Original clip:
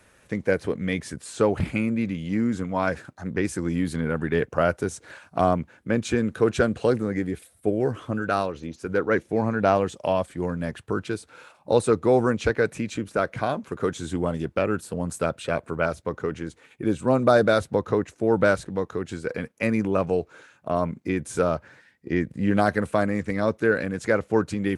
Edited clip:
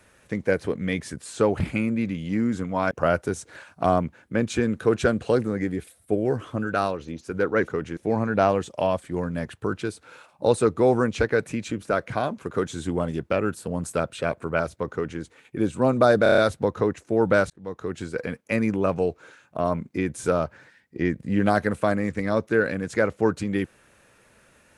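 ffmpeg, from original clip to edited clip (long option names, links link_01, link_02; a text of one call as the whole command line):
ffmpeg -i in.wav -filter_complex "[0:a]asplit=10[link_01][link_02][link_03][link_04][link_05][link_06][link_07][link_08][link_09][link_10];[link_01]atrim=end=2.912[link_11];[link_02]atrim=start=4.458:end=9.232[link_12];[link_03]atrim=start=16.178:end=16.472[link_13];[link_04]atrim=start=9.228:end=17.522[link_14];[link_05]atrim=start=17.488:end=17.522[link_15];[link_06]atrim=start=17.488:end=17.522[link_16];[link_07]atrim=start=17.488:end=17.522[link_17];[link_08]atrim=start=17.488:end=17.522[link_18];[link_09]atrim=start=17.488:end=18.61,asetpts=PTS-STARTPTS,afade=type=out:start_time=1.118:duration=0.004:curve=hsin[link_19];[link_10]atrim=start=18.61,asetpts=PTS-STARTPTS,afade=type=in:duration=0.43[link_20];[link_11][link_12]acrossfade=duration=0.004:curve1=hsin:curve2=hsin[link_21];[link_21][link_13]acrossfade=duration=0.004:curve1=hsin:curve2=hsin[link_22];[link_22][link_14]acrossfade=duration=0.004:curve1=hsin:curve2=hsin[link_23];[link_23][link_15]acrossfade=duration=0.004:curve1=hsin:curve2=hsin[link_24];[link_24][link_16]acrossfade=duration=0.004:curve1=hsin:curve2=hsin[link_25];[link_25][link_17]acrossfade=duration=0.004:curve1=hsin:curve2=hsin[link_26];[link_26][link_18]acrossfade=duration=0.004:curve1=hsin:curve2=hsin[link_27];[link_19][link_20]concat=n=2:v=0:a=1[link_28];[link_27][link_28]acrossfade=duration=0.004:curve1=hsin:curve2=hsin" out.wav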